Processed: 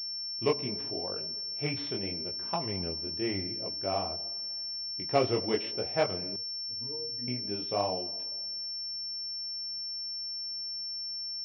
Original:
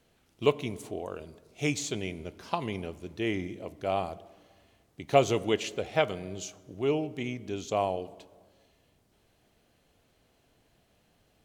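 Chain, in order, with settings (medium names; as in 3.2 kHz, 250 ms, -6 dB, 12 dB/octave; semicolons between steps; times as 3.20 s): chorus voices 2, 0.82 Hz, delay 21 ms, depth 4.5 ms; 6.36–7.28 s: pitch-class resonator A#, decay 0.2 s; class-D stage that switches slowly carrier 5.4 kHz; trim +1 dB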